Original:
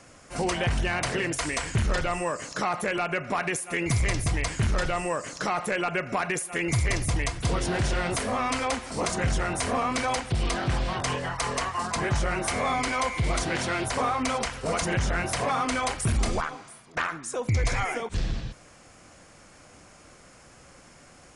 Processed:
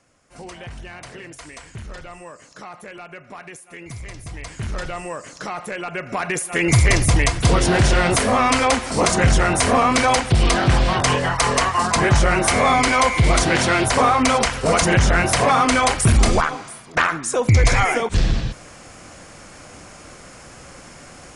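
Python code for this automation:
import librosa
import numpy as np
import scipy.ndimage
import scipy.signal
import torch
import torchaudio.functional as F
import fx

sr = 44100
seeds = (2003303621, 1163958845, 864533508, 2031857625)

y = fx.gain(x, sr, db=fx.line((4.16, -10.0), (4.74, -1.5), (5.85, -1.5), (6.74, 10.5)))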